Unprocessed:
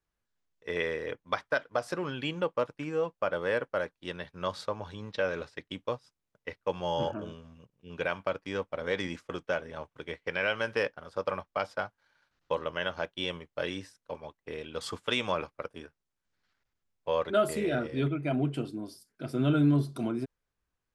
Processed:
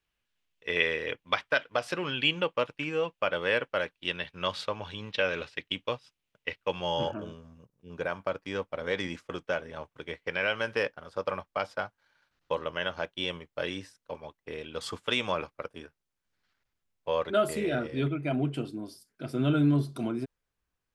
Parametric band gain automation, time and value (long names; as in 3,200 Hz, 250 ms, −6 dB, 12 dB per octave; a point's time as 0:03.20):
parametric band 2,800 Hz 1 octave
0:06.56 +12.5 dB
0:07.18 +3 dB
0:07.45 −7.5 dB
0:08.06 −7.5 dB
0:08.47 +2 dB